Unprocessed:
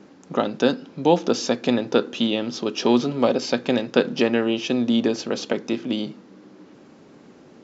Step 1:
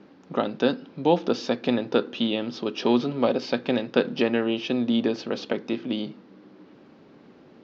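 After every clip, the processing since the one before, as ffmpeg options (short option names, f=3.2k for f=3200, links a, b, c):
-af "lowpass=f=4.7k:w=0.5412,lowpass=f=4.7k:w=1.3066,volume=-3dB"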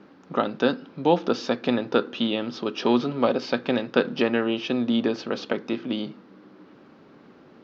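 -af "equalizer=f=1.3k:w=1.8:g=5"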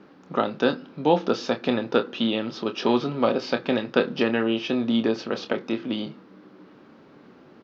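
-filter_complex "[0:a]asplit=2[a][b];[b]adelay=27,volume=-9dB[c];[a][c]amix=inputs=2:normalize=0"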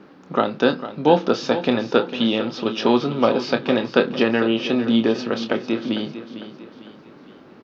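-af "aecho=1:1:451|902|1353|1804:0.237|0.104|0.0459|0.0202,volume=4dB"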